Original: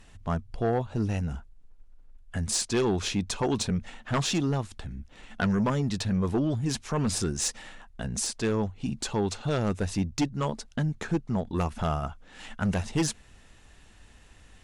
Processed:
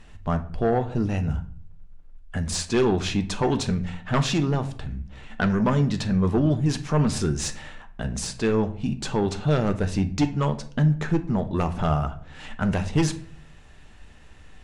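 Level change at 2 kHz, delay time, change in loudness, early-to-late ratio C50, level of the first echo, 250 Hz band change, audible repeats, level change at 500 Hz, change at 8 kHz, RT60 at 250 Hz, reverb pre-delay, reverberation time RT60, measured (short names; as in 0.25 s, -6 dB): +4.0 dB, none, +4.5 dB, 15.0 dB, none, +4.5 dB, none, +4.5 dB, -2.0 dB, 0.65 s, 5 ms, 0.50 s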